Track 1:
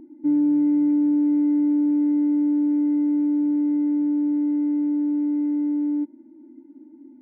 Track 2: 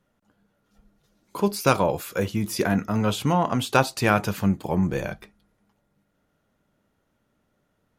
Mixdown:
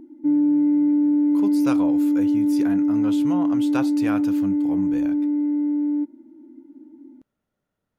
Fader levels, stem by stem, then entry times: +1.0 dB, -10.0 dB; 0.00 s, 0.00 s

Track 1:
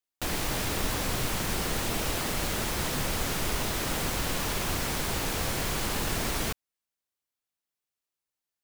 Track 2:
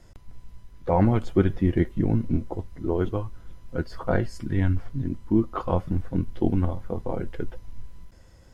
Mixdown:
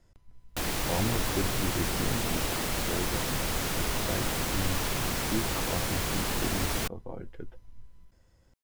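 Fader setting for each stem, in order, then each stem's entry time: -0.5 dB, -11.0 dB; 0.35 s, 0.00 s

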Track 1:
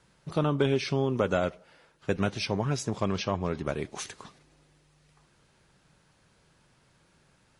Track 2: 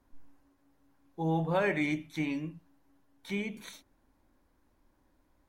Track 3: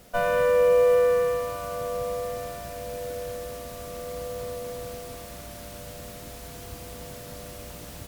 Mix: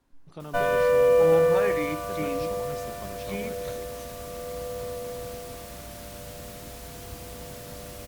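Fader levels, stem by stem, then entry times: -14.0 dB, -1.5 dB, 0.0 dB; 0.00 s, 0.00 s, 0.40 s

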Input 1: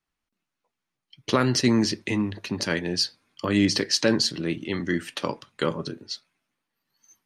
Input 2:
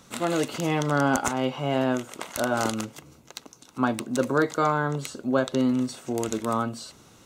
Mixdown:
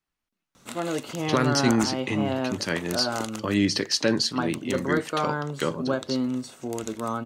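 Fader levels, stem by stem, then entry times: -1.5 dB, -3.5 dB; 0.00 s, 0.55 s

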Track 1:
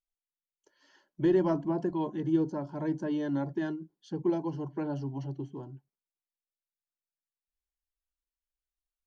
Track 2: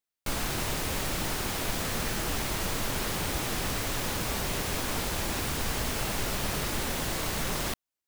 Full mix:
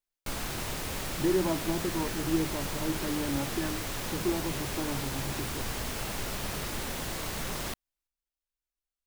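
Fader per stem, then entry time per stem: -2.0 dB, -4.0 dB; 0.00 s, 0.00 s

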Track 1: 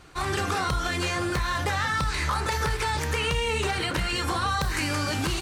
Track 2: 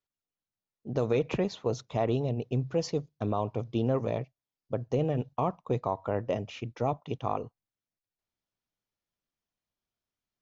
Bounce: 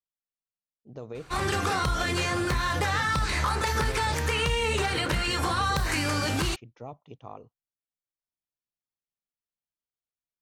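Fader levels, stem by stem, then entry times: 0.0 dB, -12.0 dB; 1.15 s, 0.00 s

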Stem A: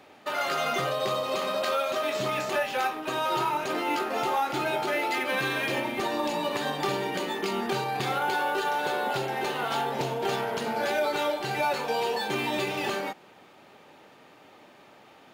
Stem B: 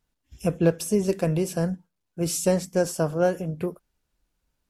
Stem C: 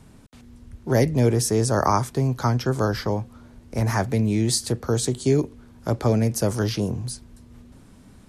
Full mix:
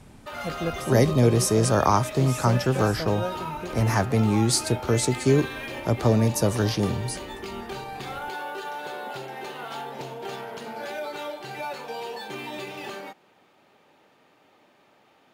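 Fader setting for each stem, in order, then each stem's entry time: -6.5 dB, -9.0 dB, 0.0 dB; 0.00 s, 0.00 s, 0.00 s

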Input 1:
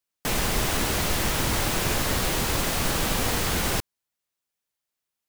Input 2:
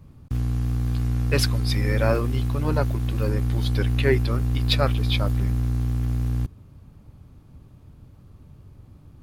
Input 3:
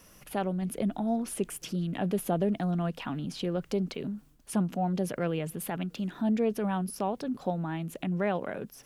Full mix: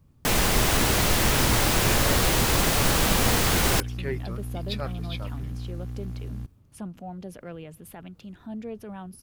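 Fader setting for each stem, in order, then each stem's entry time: +3.0 dB, -11.0 dB, -9.0 dB; 0.00 s, 0.00 s, 2.25 s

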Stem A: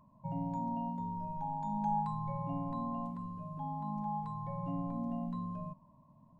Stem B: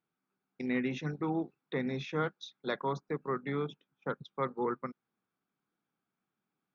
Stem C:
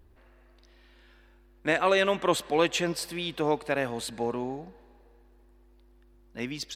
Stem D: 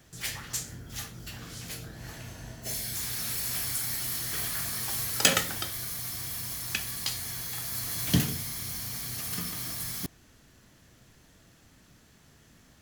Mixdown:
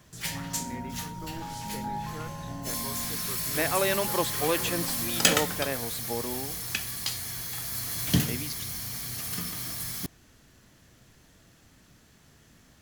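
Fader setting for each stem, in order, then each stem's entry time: -2.0 dB, -10.0 dB, -3.5 dB, +0.5 dB; 0.00 s, 0.00 s, 1.90 s, 0.00 s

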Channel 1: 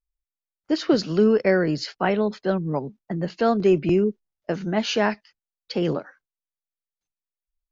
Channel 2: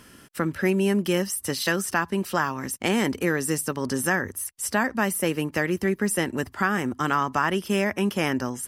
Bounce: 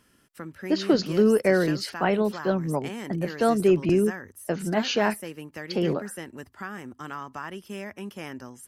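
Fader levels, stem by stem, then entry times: -1.5 dB, -13.0 dB; 0.00 s, 0.00 s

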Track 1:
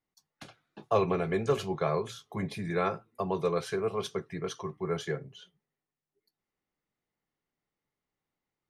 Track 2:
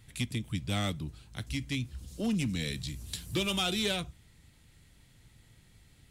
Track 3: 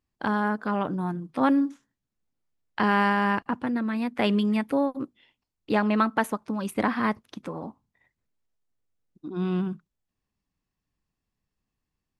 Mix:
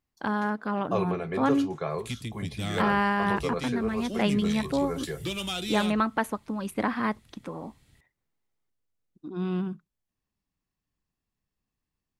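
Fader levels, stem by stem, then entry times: -2.5 dB, -2.0 dB, -2.5 dB; 0.00 s, 1.90 s, 0.00 s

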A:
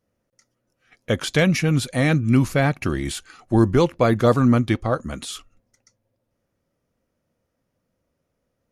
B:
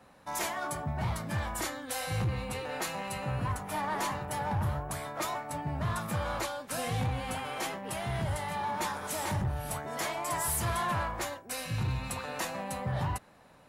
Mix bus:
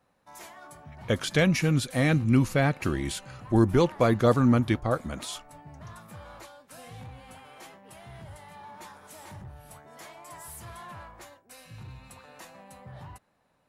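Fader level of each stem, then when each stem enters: -4.5 dB, -12.5 dB; 0.00 s, 0.00 s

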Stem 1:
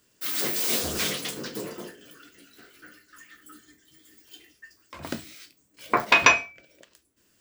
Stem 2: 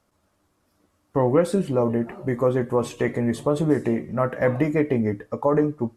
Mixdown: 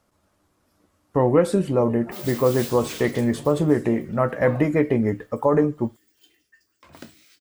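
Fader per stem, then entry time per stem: -9.0 dB, +1.5 dB; 1.90 s, 0.00 s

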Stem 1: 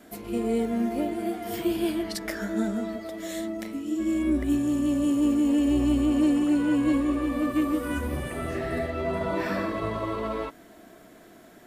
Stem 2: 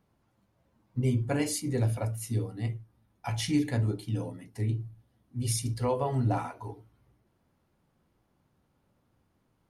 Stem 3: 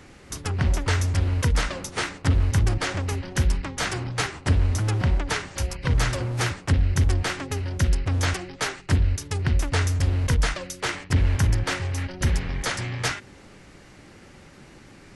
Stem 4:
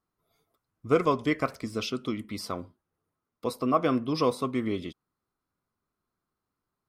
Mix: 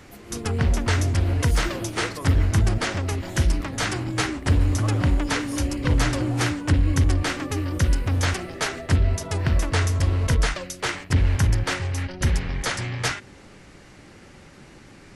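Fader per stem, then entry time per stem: -7.5 dB, -9.0 dB, +1.0 dB, -12.5 dB; 0.00 s, 0.00 s, 0.00 s, 1.10 s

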